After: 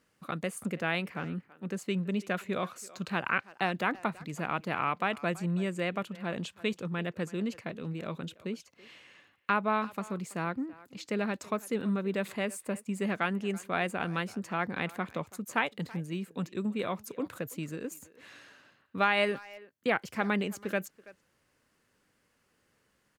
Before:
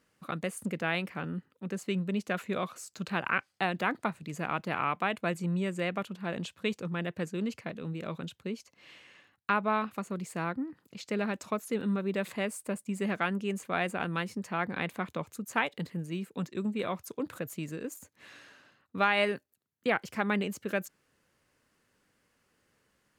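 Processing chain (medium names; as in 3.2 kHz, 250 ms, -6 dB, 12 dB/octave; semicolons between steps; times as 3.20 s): speakerphone echo 330 ms, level -19 dB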